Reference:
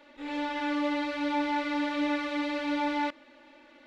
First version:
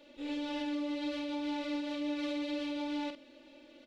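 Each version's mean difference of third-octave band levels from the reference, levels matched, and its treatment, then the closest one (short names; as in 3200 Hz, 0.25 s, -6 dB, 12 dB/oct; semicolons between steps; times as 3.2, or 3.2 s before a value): 3.5 dB: band shelf 1300 Hz -10.5 dB; limiter -30.5 dBFS, peak gain reduction 9 dB; doubler 47 ms -7 dB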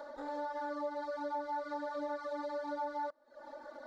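6.0 dB: reverb removal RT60 0.57 s; EQ curve 350 Hz 0 dB, 600 Hz +14 dB, 1600 Hz +6 dB, 2600 Hz -21 dB, 4300 Hz +3 dB; compressor 2.5:1, threshold -51 dBFS, peak gain reduction 22 dB; gain +4 dB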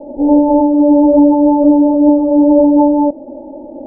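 12.0 dB: steep low-pass 810 Hz 72 dB/oct; maximiser +31.5 dB; noise-modulated level, depth 55%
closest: first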